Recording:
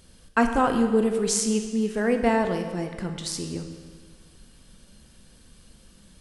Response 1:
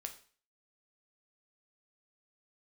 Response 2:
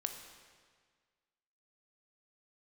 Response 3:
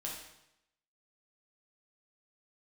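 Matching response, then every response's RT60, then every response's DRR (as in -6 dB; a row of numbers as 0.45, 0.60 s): 2; 0.45, 1.7, 0.85 s; 4.5, 5.0, -3.5 dB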